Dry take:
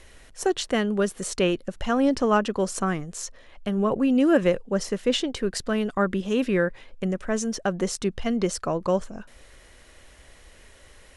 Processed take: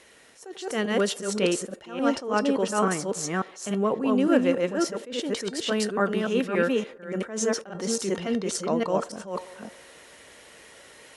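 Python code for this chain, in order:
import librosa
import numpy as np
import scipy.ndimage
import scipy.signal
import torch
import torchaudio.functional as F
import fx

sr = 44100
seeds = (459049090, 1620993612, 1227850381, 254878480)

p1 = fx.reverse_delay(x, sr, ms=285, wet_db=-1.5)
p2 = scipy.signal.sosfilt(scipy.signal.butter(2, 190.0, 'highpass', fs=sr, output='sos'), p1)
p3 = fx.rider(p2, sr, range_db=4, speed_s=0.5)
p4 = p2 + F.gain(torch.from_numpy(p3), 1.0).numpy()
p5 = fx.comb_fb(p4, sr, f0_hz=460.0, decay_s=0.16, harmonics='all', damping=0.0, mix_pct=60)
p6 = fx.echo_wet_bandpass(p5, sr, ms=92, feedback_pct=70, hz=670.0, wet_db=-22.0)
y = fx.attack_slew(p6, sr, db_per_s=120.0)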